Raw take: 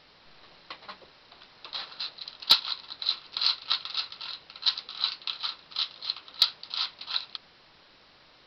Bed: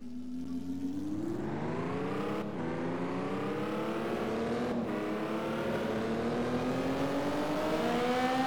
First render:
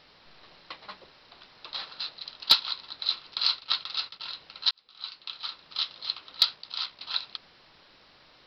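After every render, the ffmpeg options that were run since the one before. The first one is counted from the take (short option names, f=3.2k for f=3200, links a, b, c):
-filter_complex "[0:a]asettb=1/sr,asplit=3[a][b][c];[a]atrim=end=3.344[d];[b]atrim=start=3.34:end=4.2,asetpts=PTS-STARTPTS,afade=t=in:d=0.004:c=qsin,afade=t=out:st=0.856:d=0.004:c=qsin,agate=range=-33dB:threshold=-42dB:ratio=3:release=100:detection=peak[e];[c]atrim=start=4.196[f];[d][e]acrossfade=d=0.004:c1=hsin:c2=qsin[g];[g][f]acrossfade=d=0.004:c1=qsin:c2=hsin,asplit=3[h][i][j];[h]afade=t=out:st=6.54:d=0.02[k];[i]tremolo=f=65:d=0.519,afade=t=in:st=6.54:d=0.02,afade=t=out:st=7:d=0.02[l];[j]afade=t=in:st=7:d=0.02[m];[k][l][m]amix=inputs=3:normalize=0,asplit=2[n][o];[n]atrim=end=4.71,asetpts=PTS-STARTPTS,afade=t=out:st=4.706:d=0.004:c=hsin[p];[o]atrim=start=4.71,asetpts=PTS-STARTPTS,afade=t=in:d=1.1[q];[p][q]concat=n=2:v=0:a=1"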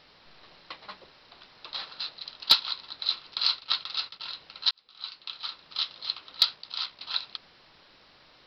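-af anull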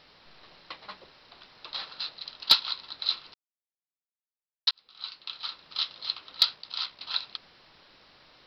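-filter_complex "[0:a]asplit=3[a][b][c];[a]atrim=end=3.34,asetpts=PTS-STARTPTS,afade=t=out:st=3.336:d=0.004:c=hsin[d];[b]atrim=start=3.34:end=4.67,asetpts=PTS-STARTPTS,volume=0[e];[c]atrim=start=4.67,asetpts=PTS-STARTPTS,afade=t=in:d=0.004:c=hsin[f];[d][e][f]concat=n=3:v=0:a=1"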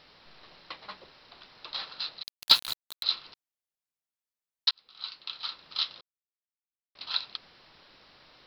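-filter_complex "[0:a]asettb=1/sr,asplit=3[a][b][c];[a]atrim=end=2.234[d];[b]atrim=start=2.23:end=3.03,asetpts=PTS-STARTPTS,afade=t=in:d=0.004:c=qsin,afade=t=out:st=0.796:d=0.004:c=qsin,aeval=exprs='val(0)*gte(abs(val(0)),0.0316)':c=same[e];[c]atrim=start=3.026[f];[d][e]acrossfade=d=0.004:c1=hsin:c2=qsin[g];[g][f]acrossfade=d=0.004:c1=qsin:c2=hsin,asplit=3[h][i][j];[h]atrim=end=6.01,asetpts=PTS-STARTPTS,afade=t=out:st=6.006:d=0.004:c=hsin[k];[i]atrim=start=6.01:end=6.95,asetpts=PTS-STARTPTS,volume=0[l];[j]atrim=start=6.95,asetpts=PTS-STARTPTS,afade=t=in:d=0.004:c=hsin[m];[k][l][m]concat=n=3:v=0:a=1"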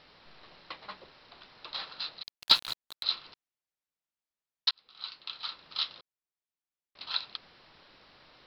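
-af "highshelf=f=7.5k:g=-11"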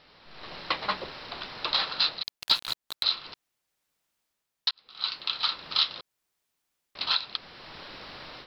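-af "dynaudnorm=f=280:g=3:m=15dB,alimiter=limit=-12dB:level=0:latency=1:release=379"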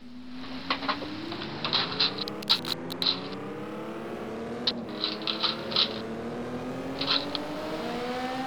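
-filter_complex "[1:a]volume=-2.5dB[a];[0:a][a]amix=inputs=2:normalize=0"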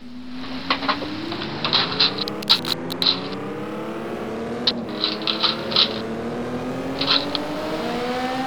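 -af "volume=7.5dB"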